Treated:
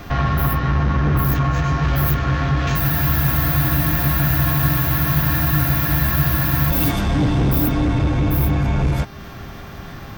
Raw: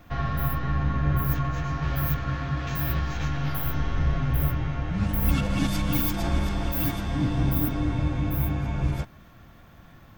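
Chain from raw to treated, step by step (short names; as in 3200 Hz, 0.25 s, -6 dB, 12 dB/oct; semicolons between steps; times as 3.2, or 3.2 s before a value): in parallel at +2 dB: compressor, threshold -37 dBFS, peak gain reduction 18 dB; on the sum: added harmonics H 5 -9 dB, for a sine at -9.5 dBFS; buzz 400 Hz, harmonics 15, -46 dBFS -4 dB/oct; spectral freeze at 2.8, 3.91 s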